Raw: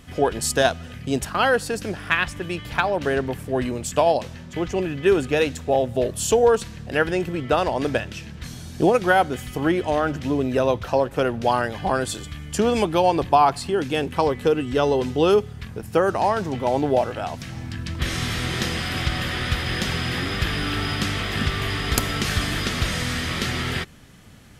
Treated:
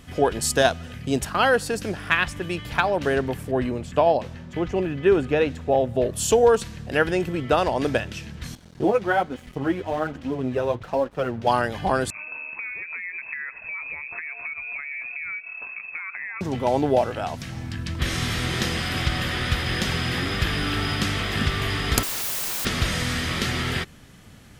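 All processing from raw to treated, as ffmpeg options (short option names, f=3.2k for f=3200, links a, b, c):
-filter_complex "[0:a]asettb=1/sr,asplit=3[a][b][c];[a]atrim=end=3.514[d];[b]atrim=start=3.51:end=6.13,asetpts=PTS-STARTPTS,afade=t=in:d=0.004:c=qsin,afade=t=out:st=2.616:d=0.004:c=qsin,highshelf=f=3.4k:g=-8.5,acrossover=split=4000[e][f];[f]acompressor=threshold=-48dB:ratio=4:attack=1:release=60[g];[e][g]amix=inputs=2:normalize=0[h];[c]atrim=start=6.126[i];[d][h]acrossfade=d=0.004:c1=hsin:c2=qsin[j];[j][i]acrossfade=d=0.004:c1=qsin:c2=hsin,asettb=1/sr,asplit=3[k][l][m];[k]atrim=end=8.554[n];[l]atrim=start=8.55:end=11.47,asetpts=PTS-STARTPTS,afade=t=in:d=0.004:c=qsin,afade=t=out:st=2.916:d=0.004:c=qsin,lowpass=f=2.6k:p=1,flanger=delay=3.6:depth=6.4:regen=13:speed=1.2:shape=sinusoidal,aeval=exprs='sgn(val(0))*max(abs(val(0))-0.00562,0)':c=same[o];[m]atrim=start=11.466[p];[n][o]acrossfade=d=0.004:c1=hsin:c2=qsin[q];[q][p]acrossfade=d=0.004:c1=qsin:c2=hsin,asettb=1/sr,asplit=3[r][s][t];[r]atrim=end=12.104[u];[s]atrim=start=12.1:end=16.41,asetpts=PTS-STARTPTS,afade=t=in:d=0.004:c=qsin,afade=t=out:st=4.306:d=0.004:c=qsin,acompressor=threshold=-29dB:ratio=16:attack=3.2:release=140:knee=1:detection=peak,lowpass=f=2.3k:t=q:w=0.5098,lowpass=f=2.3k:t=q:w=0.6013,lowpass=f=2.3k:t=q:w=0.9,lowpass=f=2.3k:t=q:w=2.563,afreqshift=-2700[v];[t]atrim=start=16.406[w];[u][v]acrossfade=d=0.004:c1=hsin:c2=qsin[x];[x][w]acrossfade=d=0.004:c1=qsin:c2=hsin,asettb=1/sr,asplit=3[y][z][aa];[y]atrim=end=22.034[ab];[z]atrim=start=22.03:end=22.65,asetpts=PTS-STARTPTS,afade=t=in:d=0.004:c=qsin,afade=t=out:st=0.616:d=0.004:c=qsin,aeval=exprs='(mod(21.1*val(0)+1,2)-1)/21.1':c=same,highshelf=f=11k:g=7.5[ac];[aa]atrim=start=22.646[ad];[ab][ac]acrossfade=d=0.004:c1=hsin:c2=qsin[ae];[ae][ad]acrossfade=d=0.004:c1=qsin:c2=hsin"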